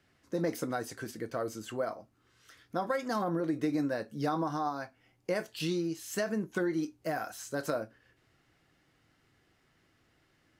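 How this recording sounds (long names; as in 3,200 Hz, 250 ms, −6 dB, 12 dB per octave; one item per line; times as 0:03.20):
background noise floor −71 dBFS
spectral slope −5.5 dB per octave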